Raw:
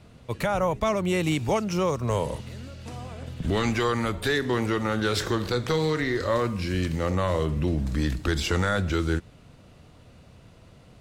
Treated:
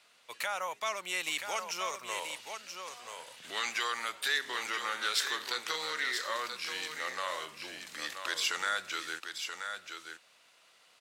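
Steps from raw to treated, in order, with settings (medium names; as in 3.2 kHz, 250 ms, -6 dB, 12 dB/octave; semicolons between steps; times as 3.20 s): Bessel high-pass 1.7 kHz, order 2; delay 980 ms -7 dB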